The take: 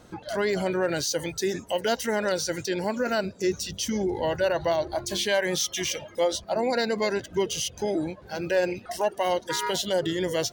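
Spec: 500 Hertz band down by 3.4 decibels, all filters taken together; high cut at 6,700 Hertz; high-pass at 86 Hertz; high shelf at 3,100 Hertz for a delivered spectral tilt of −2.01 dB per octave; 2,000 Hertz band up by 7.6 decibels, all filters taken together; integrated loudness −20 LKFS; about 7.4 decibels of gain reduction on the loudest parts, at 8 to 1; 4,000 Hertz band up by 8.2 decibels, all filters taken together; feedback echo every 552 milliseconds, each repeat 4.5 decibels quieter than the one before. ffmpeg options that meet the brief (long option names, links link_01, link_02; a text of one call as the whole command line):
ffmpeg -i in.wav -af "highpass=86,lowpass=6700,equalizer=frequency=500:width_type=o:gain=-5,equalizer=frequency=2000:width_type=o:gain=7,highshelf=frequency=3100:gain=6.5,equalizer=frequency=4000:width_type=o:gain=4,acompressor=threshold=-25dB:ratio=8,aecho=1:1:552|1104|1656|2208|2760|3312|3864|4416|4968:0.596|0.357|0.214|0.129|0.0772|0.0463|0.0278|0.0167|0.01,volume=7.5dB" out.wav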